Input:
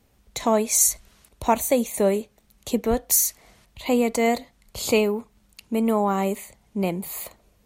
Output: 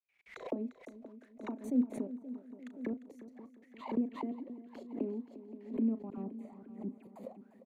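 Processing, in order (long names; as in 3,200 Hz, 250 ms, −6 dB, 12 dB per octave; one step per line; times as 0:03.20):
loose part that buzzes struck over −29 dBFS, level −25 dBFS
dynamic equaliser 570 Hz, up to +4 dB, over −29 dBFS, Q 0.73
in parallel at −2 dB: downward compressor 12 to 1, threshold −28 dBFS, peak gain reduction 18 dB
on the sum: brickwall limiter −12 dBFS, peak gain reduction 9 dB
gate pattern ".x.xx.xx..xxx.x." 174 BPM −60 dB
envelope filter 260–2,400 Hz, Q 13, down, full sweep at −23 dBFS
double-tracking delay 36 ms −13.5 dB
0:06.10–0:07.07: all-pass dispersion lows, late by 74 ms, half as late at 1,500 Hz
on a send: echo machine with several playback heads 175 ms, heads second and third, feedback 52%, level −15 dB
on the sum: background raised ahead of every attack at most 140 dB per second
level +1 dB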